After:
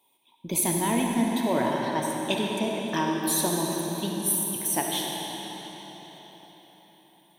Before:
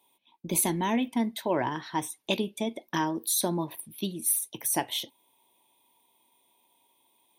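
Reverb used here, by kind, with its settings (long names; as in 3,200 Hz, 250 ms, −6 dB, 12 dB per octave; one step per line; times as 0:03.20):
comb and all-pass reverb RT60 4.8 s, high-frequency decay 0.85×, pre-delay 15 ms, DRR −1 dB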